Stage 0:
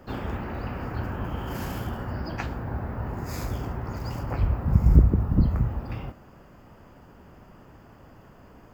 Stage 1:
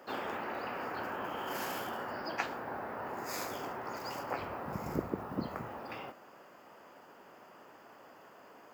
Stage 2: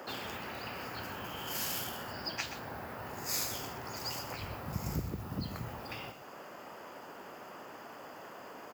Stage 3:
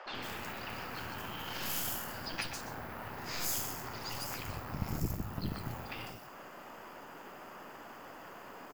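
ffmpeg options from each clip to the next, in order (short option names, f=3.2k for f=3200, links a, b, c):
-af "highpass=450"
-filter_complex "[0:a]acrossover=split=140|3000[a][b][c];[b]acompressor=threshold=-55dB:ratio=4[d];[a][d][c]amix=inputs=3:normalize=0,aecho=1:1:126:0.266,volume=9.5dB"
-filter_complex "[0:a]aeval=exprs='0.126*(cos(1*acos(clip(val(0)/0.126,-1,1)))-cos(1*PI/2))+0.0158*(cos(8*acos(clip(val(0)/0.126,-1,1)))-cos(8*PI/2))':c=same,acrossover=split=520|5000[a][b][c];[a]adelay=60[d];[c]adelay=150[e];[d][b][e]amix=inputs=3:normalize=0"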